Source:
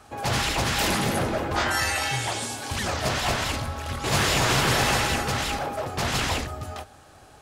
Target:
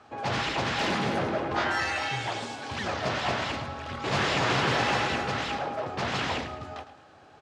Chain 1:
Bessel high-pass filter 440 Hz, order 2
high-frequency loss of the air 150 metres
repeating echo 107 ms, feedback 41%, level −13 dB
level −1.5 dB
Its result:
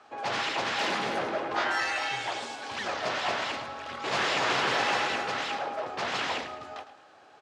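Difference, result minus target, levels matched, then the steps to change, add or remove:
125 Hz band −12.5 dB
change: Bessel high-pass filter 150 Hz, order 2

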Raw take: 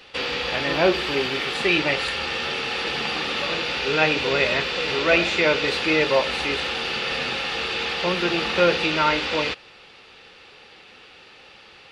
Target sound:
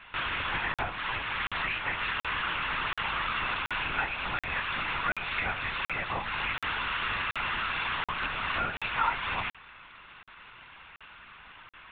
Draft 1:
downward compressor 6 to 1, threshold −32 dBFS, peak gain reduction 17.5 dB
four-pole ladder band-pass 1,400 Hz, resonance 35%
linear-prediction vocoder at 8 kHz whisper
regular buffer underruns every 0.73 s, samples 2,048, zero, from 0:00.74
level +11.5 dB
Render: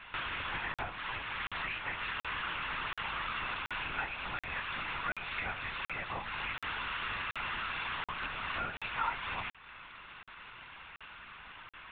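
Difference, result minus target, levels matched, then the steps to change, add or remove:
downward compressor: peak gain reduction +6 dB
change: downward compressor 6 to 1, threshold −24.5 dBFS, peak gain reduction 11.5 dB

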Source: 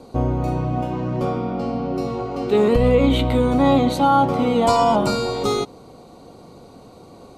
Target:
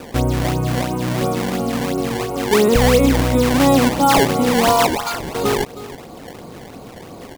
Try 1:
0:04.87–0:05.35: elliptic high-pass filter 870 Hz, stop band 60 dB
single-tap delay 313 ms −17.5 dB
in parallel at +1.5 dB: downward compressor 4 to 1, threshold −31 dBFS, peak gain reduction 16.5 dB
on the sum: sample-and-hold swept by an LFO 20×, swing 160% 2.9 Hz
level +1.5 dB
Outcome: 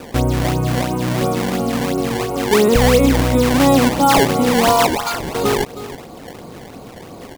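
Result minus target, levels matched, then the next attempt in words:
downward compressor: peak gain reduction −6.5 dB
0:04.87–0:05.35: elliptic high-pass filter 870 Hz, stop band 60 dB
single-tap delay 313 ms −17.5 dB
in parallel at +1.5 dB: downward compressor 4 to 1, threshold −40 dBFS, peak gain reduction 23 dB
on the sum: sample-and-hold swept by an LFO 20×, swing 160% 2.9 Hz
level +1.5 dB

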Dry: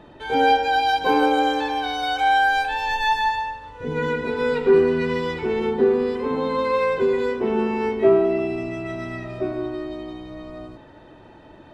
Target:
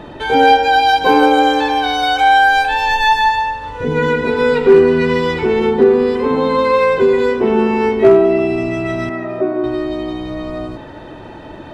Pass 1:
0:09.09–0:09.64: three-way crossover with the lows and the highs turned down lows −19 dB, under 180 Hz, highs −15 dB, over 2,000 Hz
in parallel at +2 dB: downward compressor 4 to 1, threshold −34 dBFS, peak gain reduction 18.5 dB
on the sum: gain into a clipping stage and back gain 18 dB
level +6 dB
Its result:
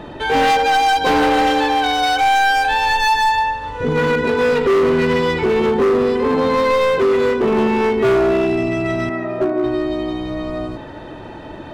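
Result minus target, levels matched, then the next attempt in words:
gain into a clipping stage and back: distortion +23 dB
0:09.09–0:09.64: three-way crossover with the lows and the highs turned down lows −19 dB, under 180 Hz, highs −15 dB, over 2,000 Hz
in parallel at +2 dB: downward compressor 4 to 1, threshold −34 dBFS, peak gain reduction 18.5 dB
on the sum: gain into a clipping stage and back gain 7.5 dB
level +6 dB

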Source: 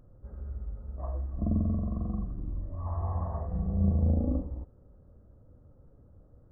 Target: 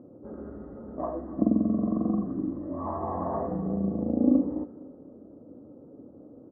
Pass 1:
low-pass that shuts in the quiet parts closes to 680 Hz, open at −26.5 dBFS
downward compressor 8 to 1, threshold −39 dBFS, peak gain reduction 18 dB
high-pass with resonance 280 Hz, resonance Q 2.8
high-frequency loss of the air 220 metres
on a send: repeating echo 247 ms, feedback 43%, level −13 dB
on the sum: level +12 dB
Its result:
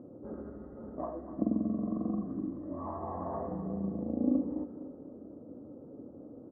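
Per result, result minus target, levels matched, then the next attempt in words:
downward compressor: peak gain reduction +7 dB; echo-to-direct +8 dB
low-pass that shuts in the quiet parts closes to 680 Hz, open at −26.5 dBFS
downward compressor 8 to 1, threshold −31 dBFS, peak gain reduction 11 dB
high-pass with resonance 280 Hz, resonance Q 2.8
high-frequency loss of the air 220 metres
on a send: repeating echo 247 ms, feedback 43%, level −13 dB
on the sum: level +12 dB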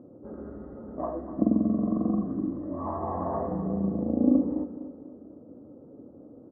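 echo-to-direct +8 dB
low-pass that shuts in the quiet parts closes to 680 Hz, open at −26.5 dBFS
downward compressor 8 to 1, threshold −31 dBFS, peak gain reduction 11 dB
high-pass with resonance 280 Hz, resonance Q 2.8
high-frequency loss of the air 220 metres
on a send: repeating echo 247 ms, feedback 43%, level −21 dB
on the sum: level +12 dB

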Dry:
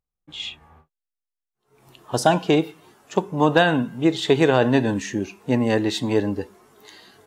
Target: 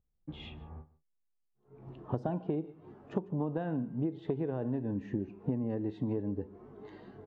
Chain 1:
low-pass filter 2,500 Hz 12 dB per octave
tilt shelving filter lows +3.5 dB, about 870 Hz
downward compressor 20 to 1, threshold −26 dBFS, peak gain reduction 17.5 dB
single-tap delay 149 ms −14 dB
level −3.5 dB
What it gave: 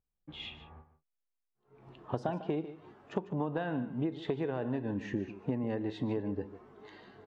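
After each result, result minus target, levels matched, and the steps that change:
echo-to-direct +7 dB; 1,000 Hz band +4.0 dB
change: single-tap delay 149 ms −21 dB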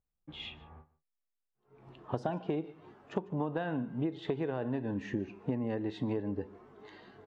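1,000 Hz band +3.5 dB
change: tilt shelving filter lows +11.5 dB, about 870 Hz

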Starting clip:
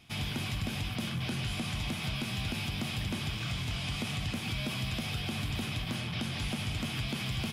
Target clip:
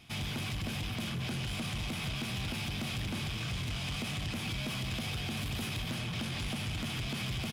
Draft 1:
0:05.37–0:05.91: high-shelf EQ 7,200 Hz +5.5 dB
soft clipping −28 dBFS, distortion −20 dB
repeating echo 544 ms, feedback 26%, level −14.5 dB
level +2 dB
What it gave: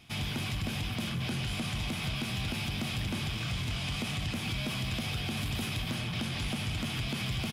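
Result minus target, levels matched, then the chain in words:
soft clipping: distortion −8 dB
0:05.37–0:05.91: high-shelf EQ 7,200 Hz +5.5 dB
soft clipping −34 dBFS, distortion −13 dB
repeating echo 544 ms, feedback 26%, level −14.5 dB
level +2 dB

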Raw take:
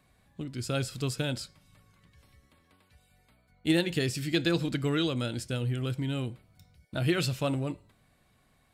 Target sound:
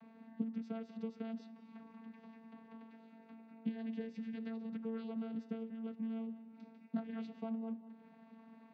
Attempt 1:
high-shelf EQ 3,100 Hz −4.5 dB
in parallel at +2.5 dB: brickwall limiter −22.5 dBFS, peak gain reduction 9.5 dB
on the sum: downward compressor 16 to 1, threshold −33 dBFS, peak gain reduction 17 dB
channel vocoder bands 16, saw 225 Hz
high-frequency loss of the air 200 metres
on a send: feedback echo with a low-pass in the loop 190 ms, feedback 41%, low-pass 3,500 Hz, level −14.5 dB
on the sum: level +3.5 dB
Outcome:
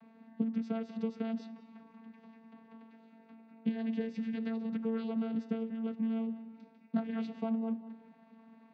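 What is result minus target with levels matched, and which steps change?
downward compressor: peak gain reduction −7 dB
change: downward compressor 16 to 1, threshold −40.5 dBFS, peak gain reduction 24 dB

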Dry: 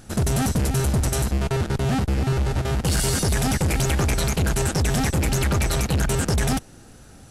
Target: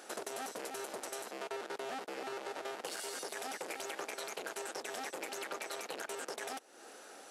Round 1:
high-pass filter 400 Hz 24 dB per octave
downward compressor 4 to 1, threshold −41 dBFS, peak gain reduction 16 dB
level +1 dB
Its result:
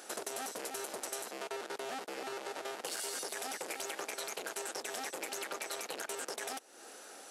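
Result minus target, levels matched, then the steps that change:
8,000 Hz band +3.0 dB
add after downward compressor: high-shelf EQ 4,400 Hz −6 dB

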